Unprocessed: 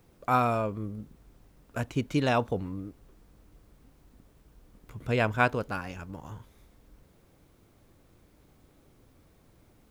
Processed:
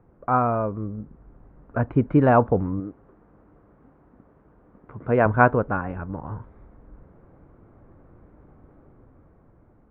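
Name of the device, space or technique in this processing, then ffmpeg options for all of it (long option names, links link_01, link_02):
action camera in a waterproof case: -filter_complex "[0:a]asettb=1/sr,asplit=3[link_01][link_02][link_03];[link_01]atrim=end=2.804[link_04];[link_02]atrim=start=2.8:end=5.26,asetpts=PTS-STARTPTS,afade=type=in:duration=0.004:curve=qsin,afade=type=out:start_time=2.456:duration=0.004:curve=qsin,highpass=frequency=210:poles=1[link_05];[link_03]atrim=start=5.256[link_06];[link_04][link_05]acrossfade=duration=0.004:curve1=hsin:curve2=qsin[link_07];[link_07][link_06]acrossfade=duration=0.004:curve1=qsin:curve2=hsin,lowpass=frequency=1500:width=0.5412,lowpass=frequency=1500:width=1.3066,dynaudnorm=framelen=290:gausssize=9:maxgain=5.5dB,volume=4dB" -ar 44100 -c:a aac -b:a 96k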